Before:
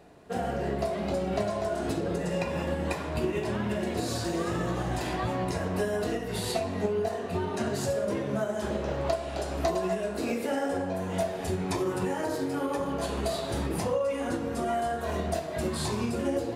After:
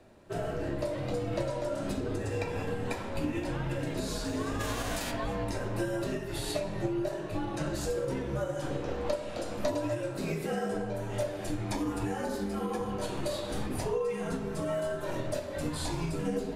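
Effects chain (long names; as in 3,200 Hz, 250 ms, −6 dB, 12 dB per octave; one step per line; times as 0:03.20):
0:04.59–0:05.10: spectral envelope flattened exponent 0.6
frequency shifter −72 Hz
level −3 dB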